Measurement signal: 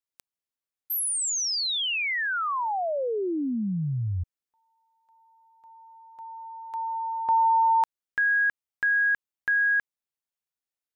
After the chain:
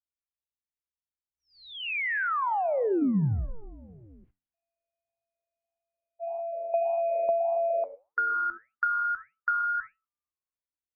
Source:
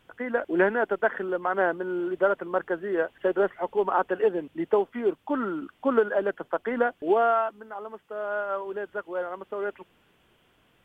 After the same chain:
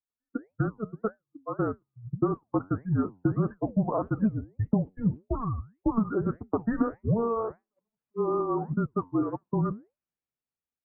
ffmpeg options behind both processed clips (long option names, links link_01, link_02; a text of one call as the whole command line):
ffmpeg -i in.wav -filter_complex "[0:a]aeval=exprs='val(0)+0.5*0.0168*sgn(val(0))':channel_layout=same,asplit=5[link_01][link_02][link_03][link_04][link_05];[link_02]adelay=251,afreqshift=-110,volume=-21.5dB[link_06];[link_03]adelay=502,afreqshift=-220,volume=-27.3dB[link_07];[link_04]adelay=753,afreqshift=-330,volume=-33.2dB[link_08];[link_05]adelay=1004,afreqshift=-440,volume=-39dB[link_09];[link_01][link_06][link_07][link_08][link_09]amix=inputs=5:normalize=0,acrossover=split=1000[link_10][link_11];[link_11]asoftclip=type=hard:threshold=-23.5dB[link_12];[link_10][link_12]amix=inputs=2:normalize=0,dynaudnorm=framelen=340:gausssize=13:maxgain=16.5dB,aeval=exprs='val(0)+0.0282*(sin(2*PI*60*n/s)+sin(2*PI*2*60*n/s)/2+sin(2*PI*3*60*n/s)/3+sin(2*PI*4*60*n/s)/4+sin(2*PI*5*60*n/s)/5)':channel_layout=same,agate=range=-27dB:threshold=-19dB:ratio=16:release=128:detection=rms,afftdn=noise_reduction=33:noise_floor=-22,flanger=delay=5.3:depth=5.8:regen=-78:speed=1.7:shape=sinusoidal,acompressor=threshold=-25dB:ratio=16:attack=83:release=461:knee=6:detection=rms,aemphasis=mode=reproduction:type=cd,highpass=frequency=380:width_type=q:width=0.5412,highpass=frequency=380:width_type=q:width=1.307,lowpass=frequency=3000:width_type=q:width=0.5176,lowpass=frequency=3000:width_type=q:width=0.7071,lowpass=frequency=3000:width_type=q:width=1.932,afreqshift=-230,lowshelf=frequency=250:gain=8,volume=-1.5dB" out.wav